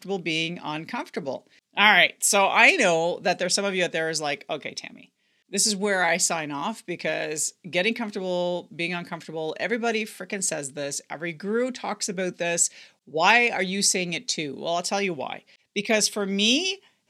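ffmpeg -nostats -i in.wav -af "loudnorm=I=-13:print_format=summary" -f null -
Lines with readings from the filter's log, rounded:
Input Integrated:    -23.8 LUFS
Input True Peak:      -1.9 dBTP
Input LRA:             6.9 LU
Input Threshold:     -34.1 LUFS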